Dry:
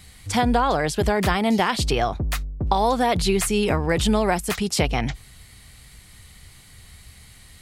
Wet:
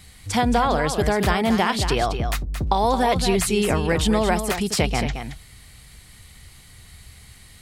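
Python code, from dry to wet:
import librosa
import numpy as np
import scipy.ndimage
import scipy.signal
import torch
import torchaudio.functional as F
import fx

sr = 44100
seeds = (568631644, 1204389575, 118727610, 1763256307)

y = x + 10.0 ** (-8.5 / 20.0) * np.pad(x, (int(223 * sr / 1000.0), 0))[:len(x)]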